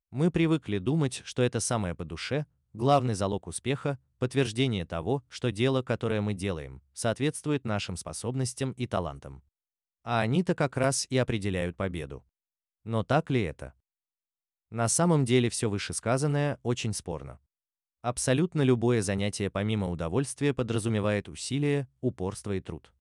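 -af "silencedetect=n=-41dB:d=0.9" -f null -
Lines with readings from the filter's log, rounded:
silence_start: 13.68
silence_end: 14.72 | silence_duration: 1.04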